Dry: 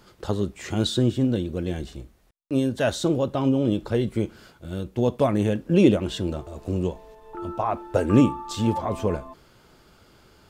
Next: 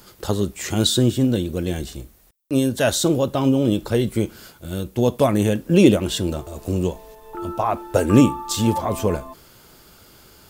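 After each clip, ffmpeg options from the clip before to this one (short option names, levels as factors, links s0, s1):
-af "aemphasis=mode=production:type=50fm,volume=1.58"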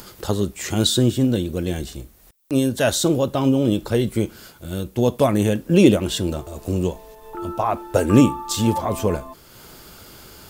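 -af "acompressor=mode=upward:threshold=0.0178:ratio=2.5"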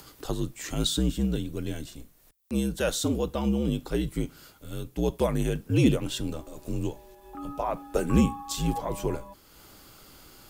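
-af "afreqshift=-63,volume=0.398"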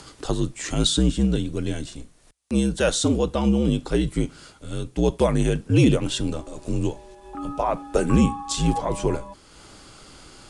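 -af "aresample=22050,aresample=44100,alimiter=level_in=4.22:limit=0.891:release=50:level=0:latency=1,volume=0.473"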